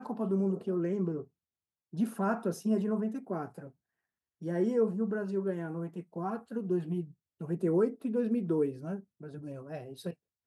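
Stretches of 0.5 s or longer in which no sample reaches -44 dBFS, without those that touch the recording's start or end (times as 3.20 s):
1.24–1.93 s
3.68–4.42 s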